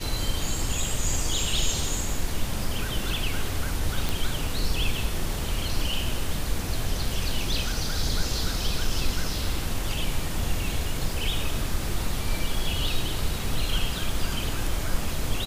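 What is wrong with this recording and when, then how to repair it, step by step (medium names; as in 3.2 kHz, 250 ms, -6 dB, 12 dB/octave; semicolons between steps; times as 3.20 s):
4.09 s: pop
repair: de-click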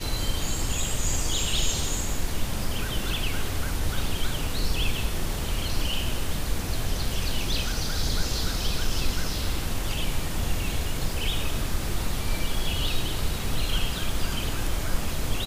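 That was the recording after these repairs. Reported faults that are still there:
nothing left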